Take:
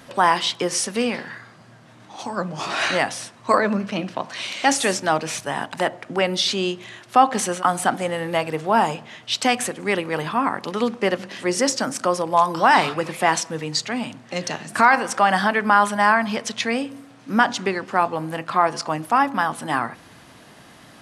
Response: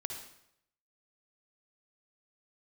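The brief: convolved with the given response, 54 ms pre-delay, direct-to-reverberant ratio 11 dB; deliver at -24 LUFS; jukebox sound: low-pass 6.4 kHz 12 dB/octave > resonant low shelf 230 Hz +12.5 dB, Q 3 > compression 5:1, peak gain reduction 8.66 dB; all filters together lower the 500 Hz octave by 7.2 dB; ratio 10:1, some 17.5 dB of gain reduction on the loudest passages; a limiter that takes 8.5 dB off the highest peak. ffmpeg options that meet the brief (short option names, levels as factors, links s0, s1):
-filter_complex "[0:a]equalizer=f=500:t=o:g=-5.5,acompressor=threshold=0.0355:ratio=10,alimiter=limit=0.0708:level=0:latency=1,asplit=2[s0][s1];[1:a]atrim=start_sample=2205,adelay=54[s2];[s1][s2]afir=irnorm=-1:irlink=0,volume=0.282[s3];[s0][s3]amix=inputs=2:normalize=0,lowpass=6400,lowshelf=f=230:t=q:w=3:g=12.5,acompressor=threshold=0.0631:ratio=5,volume=2.11"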